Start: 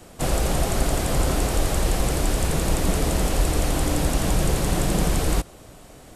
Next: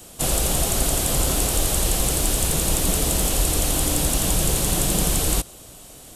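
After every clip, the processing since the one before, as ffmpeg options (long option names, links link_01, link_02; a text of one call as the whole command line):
ffmpeg -i in.wav -af "aexciter=amount=1.7:drive=8.3:freq=2800,volume=-1.5dB" out.wav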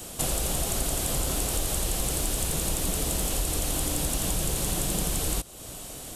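ffmpeg -i in.wav -af "acompressor=threshold=-33dB:ratio=2.5,volume=3.5dB" out.wav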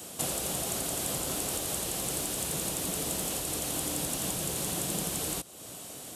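ffmpeg -i in.wav -af "highpass=130,volume=-3dB" out.wav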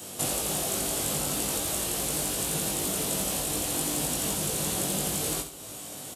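ffmpeg -i in.wav -filter_complex "[0:a]asplit=2[link_01][link_02];[link_02]adelay=20,volume=-2.5dB[link_03];[link_01][link_03]amix=inputs=2:normalize=0,aecho=1:1:69|138|207|276:0.335|0.131|0.0509|0.0199,volume=1dB" out.wav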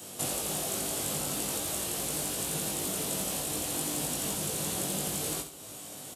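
ffmpeg -i in.wav -af "highpass=64,volume=-3.5dB" out.wav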